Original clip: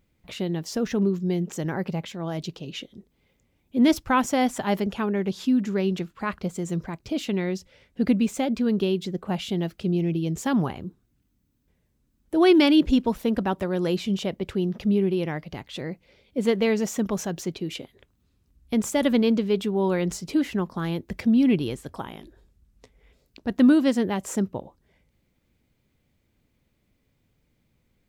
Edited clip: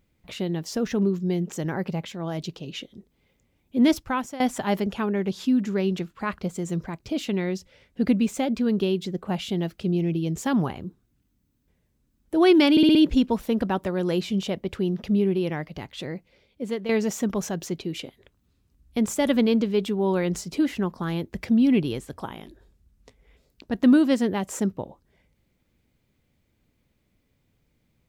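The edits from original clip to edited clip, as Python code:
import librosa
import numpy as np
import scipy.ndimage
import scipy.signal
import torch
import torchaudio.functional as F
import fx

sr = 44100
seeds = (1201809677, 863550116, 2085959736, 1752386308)

y = fx.edit(x, sr, fx.fade_out_to(start_s=3.86, length_s=0.54, floor_db=-16.5),
    fx.stutter(start_s=12.71, slice_s=0.06, count=5),
    fx.fade_out_to(start_s=15.78, length_s=0.87, floor_db=-10.0), tone=tone)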